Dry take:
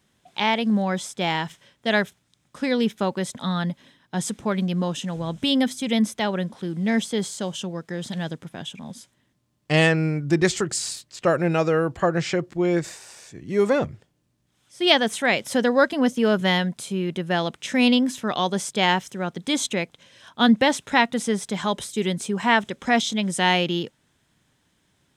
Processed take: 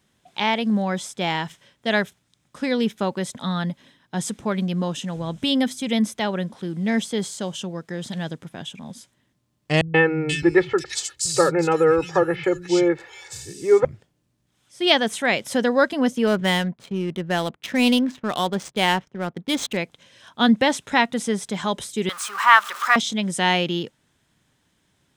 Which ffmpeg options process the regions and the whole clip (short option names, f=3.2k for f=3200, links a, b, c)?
-filter_complex "[0:a]asettb=1/sr,asplit=3[a][b][c];[a]atrim=end=9.814[d];[b]atrim=start=9.81:end=13.85,asetpts=PTS-STARTPTS,afade=t=in:d=0.004:c=qsin,afade=t=out:st=4.036:d=0.004:c=qsin,aecho=1:1:2.3:0.98,atrim=end_sample=178164,acrossover=split=160|2700[e][f][g];[f]adelay=130[h];[g]adelay=480[i];[e][h][i]amix=inputs=3:normalize=0,atrim=end_sample=178164[j];[c]atrim=start=13.846[k];[d][j]acrossfade=d=0.004:c1=hsin:c2=qsin[l];[l][k]acrossfade=d=0.004:c1=qsin:c2=hsin,asettb=1/sr,asplit=3[m][n][o];[m]atrim=end=16.274[p];[n]atrim=start=16.27:end=19.77,asetpts=PTS-STARTPTS,afade=t=in:d=0.004:c=qsin,afade=t=out:st=3.496:d=0.004:c=qsin,agate=range=-9dB:threshold=-40dB:ratio=16:release=100:detection=peak,adynamicsmooth=sensitivity=7:basefreq=1.1k[q];[o]atrim=start=19.766[r];[p][q]acrossfade=d=0.004:c1=hsin:c2=qsin[s];[s][r]acrossfade=d=0.004:c1=qsin:c2=hsin,asettb=1/sr,asplit=3[t][u][v];[t]atrim=end=22.094[w];[u]atrim=start=22.09:end=22.96,asetpts=PTS-STARTPTS,afade=t=in:d=0.004:c=qsin,afade=t=out:st=0.866:d=0.004:c=qsin,aeval=exprs='val(0)+0.5*0.0299*sgn(val(0))':c=same,highpass=f=1.2k:t=q:w=7.4[x];[v]atrim=start=22.956[y];[w][x]acrossfade=d=0.004:c1=hsin:c2=qsin[z];[z][y]acrossfade=d=0.004:c1=qsin:c2=hsin"